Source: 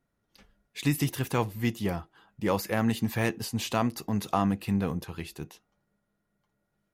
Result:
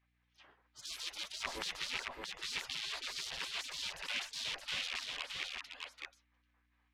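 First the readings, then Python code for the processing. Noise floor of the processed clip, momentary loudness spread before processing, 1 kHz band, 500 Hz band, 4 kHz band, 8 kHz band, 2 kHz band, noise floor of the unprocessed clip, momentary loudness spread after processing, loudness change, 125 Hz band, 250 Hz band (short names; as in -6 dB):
-77 dBFS, 12 LU, -15.5 dB, -21.5 dB, +3.0 dB, -4.5 dB, -3.5 dB, -79 dBFS, 9 LU, -10.0 dB, -33.5 dB, -32.0 dB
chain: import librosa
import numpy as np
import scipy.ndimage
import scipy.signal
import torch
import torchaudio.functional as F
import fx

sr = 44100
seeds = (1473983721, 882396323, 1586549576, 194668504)

p1 = (np.mod(10.0 ** (28.0 / 20.0) * x + 1.0, 2.0) - 1.0) / 10.0 ** (28.0 / 20.0)
p2 = scipy.signal.sosfilt(scipy.signal.butter(2, 1700.0, 'lowpass', fs=sr, output='sos'), p1)
p3 = fx.spec_gate(p2, sr, threshold_db=-25, keep='weak')
p4 = fx.add_hum(p3, sr, base_hz=60, snr_db=34)
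p5 = p4 + fx.echo_single(p4, sr, ms=620, db=-3.5, dry=0)
y = p5 * 10.0 ** (16.0 / 20.0)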